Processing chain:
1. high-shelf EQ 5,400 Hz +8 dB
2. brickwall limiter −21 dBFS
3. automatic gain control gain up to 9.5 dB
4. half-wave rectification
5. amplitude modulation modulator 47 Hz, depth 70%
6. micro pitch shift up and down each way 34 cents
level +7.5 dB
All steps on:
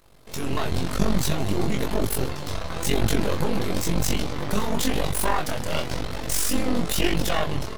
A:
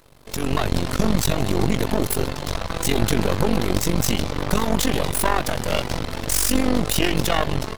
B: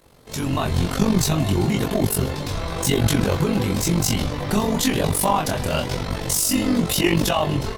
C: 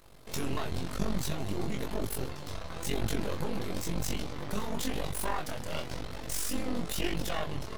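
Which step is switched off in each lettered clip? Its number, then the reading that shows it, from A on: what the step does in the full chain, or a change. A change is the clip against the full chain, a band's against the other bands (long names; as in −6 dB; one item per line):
6, change in momentary loudness spread −1 LU
4, 2 kHz band −2.0 dB
3, change in momentary loudness spread −1 LU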